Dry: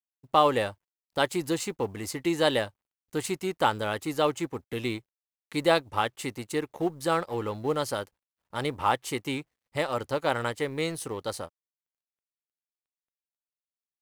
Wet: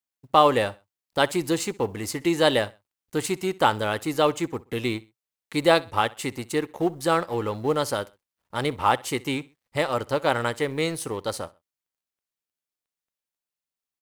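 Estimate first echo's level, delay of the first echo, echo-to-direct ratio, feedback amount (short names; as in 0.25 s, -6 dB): -22.0 dB, 64 ms, -21.5 dB, 33%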